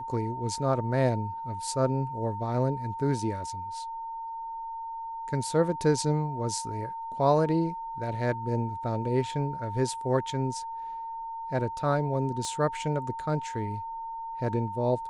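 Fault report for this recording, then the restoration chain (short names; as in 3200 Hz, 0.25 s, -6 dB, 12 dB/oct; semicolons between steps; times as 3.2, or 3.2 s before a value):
tone 910 Hz -34 dBFS
12.45 pop -23 dBFS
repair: de-click; notch 910 Hz, Q 30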